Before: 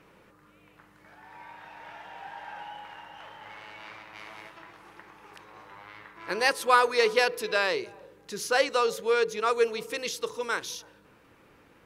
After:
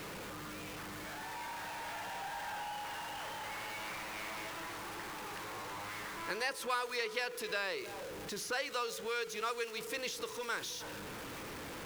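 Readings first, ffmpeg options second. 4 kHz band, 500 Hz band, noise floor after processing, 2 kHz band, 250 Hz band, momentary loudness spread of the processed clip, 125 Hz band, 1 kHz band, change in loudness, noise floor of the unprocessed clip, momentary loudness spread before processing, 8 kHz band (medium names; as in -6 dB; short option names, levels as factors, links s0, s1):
-6.5 dB, -13.0 dB, -45 dBFS, -8.0 dB, -4.5 dB, 8 LU, no reading, -9.5 dB, -13.5 dB, -59 dBFS, 22 LU, -4.5 dB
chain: -filter_complex "[0:a]aeval=exprs='val(0)+0.5*0.0188*sgn(val(0))':c=same,acrossover=split=1200|2600[s0][s1][s2];[s0]acompressor=threshold=0.0178:ratio=4[s3];[s1]acompressor=threshold=0.0224:ratio=4[s4];[s2]acompressor=threshold=0.0158:ratio=4[s5];[s3][s4][s5]amix=inputs=3:normalize=0,volume=0.531"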